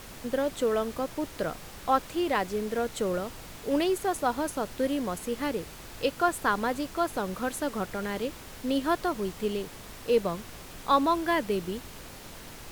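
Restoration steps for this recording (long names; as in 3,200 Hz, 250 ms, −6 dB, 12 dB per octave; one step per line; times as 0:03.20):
noise reduction from a noise print 29 dB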